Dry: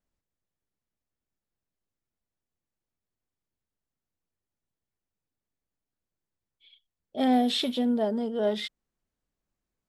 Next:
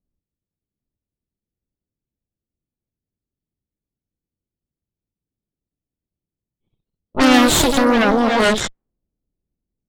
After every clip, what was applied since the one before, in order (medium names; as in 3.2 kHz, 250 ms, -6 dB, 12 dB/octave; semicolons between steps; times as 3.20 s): Chebyshev shaper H 8 -6 dB, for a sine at -14.5 dBFS; level-controlled noise filter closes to 330 Hz, open at -19.5 dBFS; ever faster or slower copies 798 ms, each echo +2 st, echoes 3, each echo -6 dB; trim +6.5 dB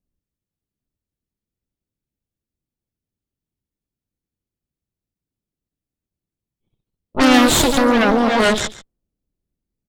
delay 141 ms -17 dB